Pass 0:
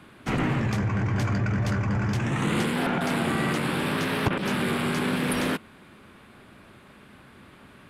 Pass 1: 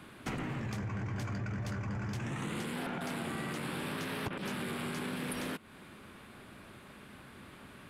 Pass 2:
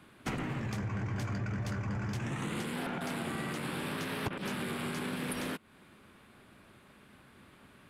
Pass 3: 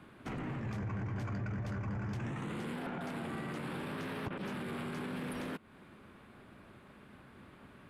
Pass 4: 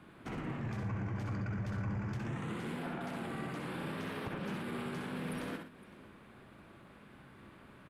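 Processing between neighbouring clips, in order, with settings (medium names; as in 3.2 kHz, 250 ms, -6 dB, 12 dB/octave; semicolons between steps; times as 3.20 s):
treble shelf 5.8 kHz +5 dB; compression 5:1, threshold -34 dBFS, peak gain reduction 13 dB; trim -2 dB
upward expansion 1.5:1, over -52 dBFS; trim +3 dB
treble shelf 2.9 kHz -10.5 dB; peak limiter -35.5 dBFS, peak gain reduction 11 dB; trim +3 dB
multi-tap echo 62/68/117/511 ms -7.5/-7.5/-11.5/-19.5 dB; trim -1.5 dB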